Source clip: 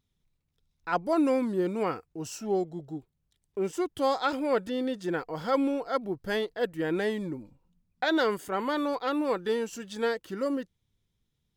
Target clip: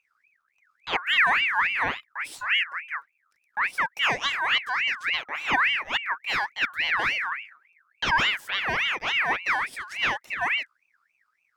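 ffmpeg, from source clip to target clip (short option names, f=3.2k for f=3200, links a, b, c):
-af "lowshelf=f=450:g=8,aeval=exprs='val(0)*sin(2*PI*1900*n/s+1900*0.35/3.5*sin(2*PI*3.5*n/s))':c=same,volume=1.5dB"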